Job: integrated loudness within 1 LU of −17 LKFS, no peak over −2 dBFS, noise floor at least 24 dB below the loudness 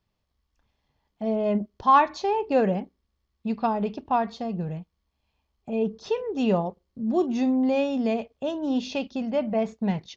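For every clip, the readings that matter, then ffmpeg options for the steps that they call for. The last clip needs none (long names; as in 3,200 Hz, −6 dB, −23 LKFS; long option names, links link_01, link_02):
integrated loudness −26.0 LKFS; sample peak −7.5 dBFS; target loudness −17.0 LKFS
→ -af "volume=9dB,alimiter=limit=-2dB:level=0:latency=1"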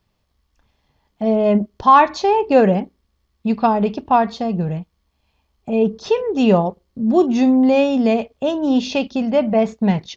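integrated loudness −17.5 LKFS; sample peak −2.0 dBFS; background noise floor −68 dBFS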